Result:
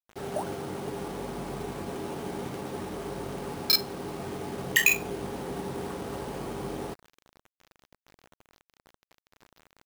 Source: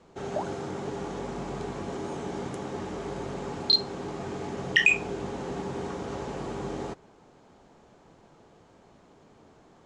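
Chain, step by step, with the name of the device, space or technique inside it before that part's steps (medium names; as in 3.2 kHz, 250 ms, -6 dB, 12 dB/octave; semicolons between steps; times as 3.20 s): early 8-bit sampler (sample-rate reducer 9.4 kHz, jitter 0%; bit crusher 8-bit); trim -1 dB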